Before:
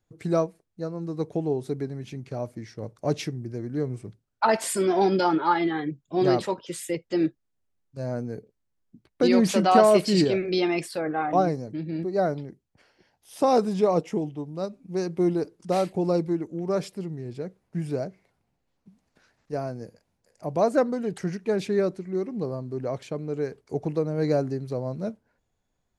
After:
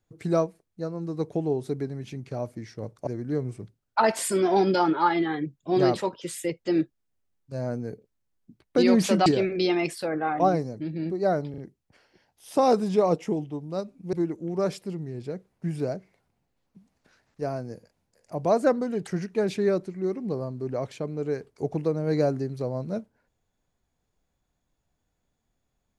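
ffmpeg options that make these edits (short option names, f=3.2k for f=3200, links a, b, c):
-filter_complex "[0:a]asplit=6[a][b][c][d][e][f];[a]atrim=end=3.072[g];[b]atrim=start=3.518:end=9.712[h];[c]atrim=start=10.188:end=12.472[i];[d]atrim=start=12.428:end=12.472[j];[e]atrim=start=12.428:end=14.982[k];[f]atrim=start=16.238[l];[g][h]acrossfade=d=0.004:c1=hsin:c2=hsin[m];[m][i]acrossfade=d=0.004:c1=hsin:c2=hsin[n];[n][j]acrossfade=d=0.004:c1=hsin:c2=hsin[o];[o][k]acrossfade=d=0.004:c1=hsin:c2=hsin[p];[p][l]acrossfade=d=0.004:c1=hsin:c2=hsin"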